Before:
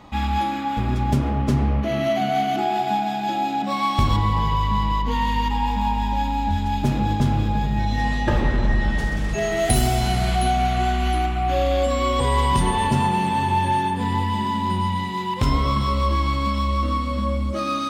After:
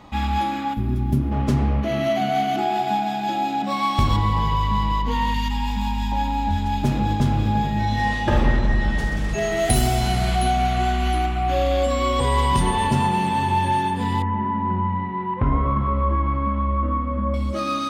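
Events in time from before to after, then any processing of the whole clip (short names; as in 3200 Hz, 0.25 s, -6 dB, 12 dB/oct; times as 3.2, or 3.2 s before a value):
0.74–1.32 spectral gain 400–9600 Hz -11 dB
5.34–6.12 EQ curve 240 Hz 0 dB, 390 Hz -13 dB, 1400 Hz -2 dB, 5900 Hz +4 dB
7.41–8.59 doubler 47 ms -4.5 dB
14.22–17.34 LPF 1800 Hz 24 dB/oct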